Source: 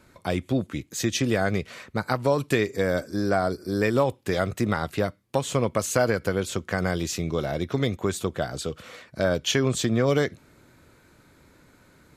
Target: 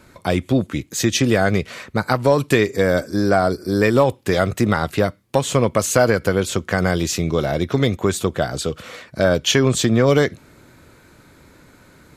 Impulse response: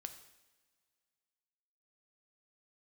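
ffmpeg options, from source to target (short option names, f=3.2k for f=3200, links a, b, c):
-af "acontrast=33,volume=2dB"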